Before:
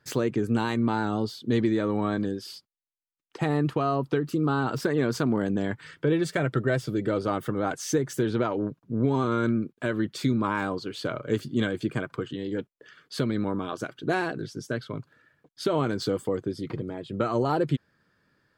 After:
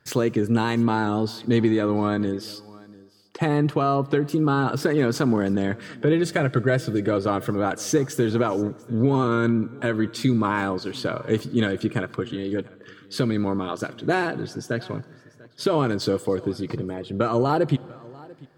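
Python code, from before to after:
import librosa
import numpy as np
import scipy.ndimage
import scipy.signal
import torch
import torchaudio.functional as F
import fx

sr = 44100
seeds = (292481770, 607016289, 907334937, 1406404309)

p1 = x + fx.echo_single(x, sr, ms=693, db=-22.5, dry=0)
p2 = fx.rev_plate(p1, sr, seeds[0], rt60_s=2.2, hf_ratio=0.8, predelay_ms=0, drr_db=19.5)
y = F.gain(torch.from_numpy(p2), 4.0).numpy()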